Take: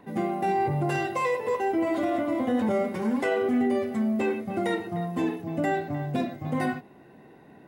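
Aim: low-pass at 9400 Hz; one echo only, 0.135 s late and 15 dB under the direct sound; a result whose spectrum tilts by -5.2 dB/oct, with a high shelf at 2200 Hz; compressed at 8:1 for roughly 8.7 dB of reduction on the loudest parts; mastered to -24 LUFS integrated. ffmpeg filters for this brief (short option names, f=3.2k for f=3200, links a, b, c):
-af "lowpass=9.4k,highshelf=f=2.2k:g=8.5,acompressor=threshold=-30dB:ratio=8,aecho=1:1:135:0.178,volume=10dB"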